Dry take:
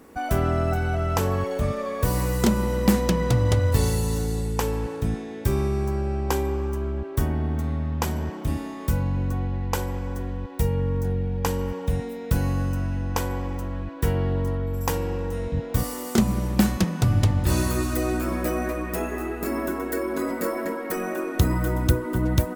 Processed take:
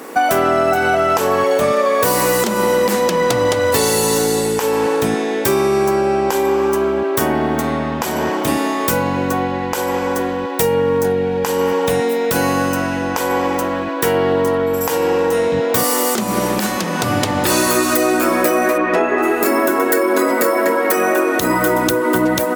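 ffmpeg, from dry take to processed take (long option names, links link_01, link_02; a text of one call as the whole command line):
ffmpeg -i in.wav -filter_complex "[0:a]asplit=3[link_01][link_02][link_03];[link_01]afade=type=out:start_time=18.77:duration=0.02[link_04];[link_02]lowpass=3100,afade=type=in:start_time=18.77:duration=0.02,afade=type=out:start_time=19.22:duration=0.02[link_05];[link_03]afade=type=in:start_time=19.22:duration=0.02[link_06];[link_04][link_05][link_06]amix=inputs=3:normalize=0,highpass=370,acompressor=threshold=-31dB:ratio=6,alimiter=level_in=22dB:limit=-1dB:release=50:level=0:latency=1,volume=-2.5dB" out.wav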